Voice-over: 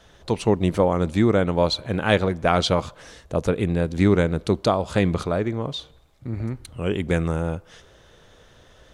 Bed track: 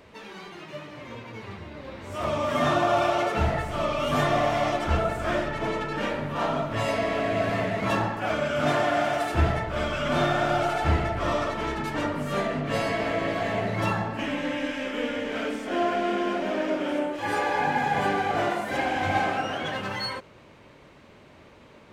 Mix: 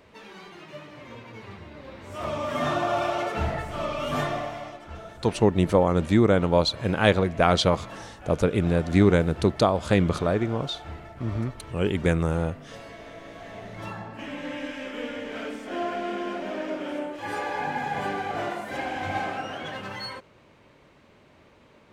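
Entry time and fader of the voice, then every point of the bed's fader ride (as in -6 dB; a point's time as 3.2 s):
4.95 s, -0.5 dB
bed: 4.2 s -3 dB
4.8 s -16.5 dB
13.23 s -16.5 dB
14.55 s -4.5 dB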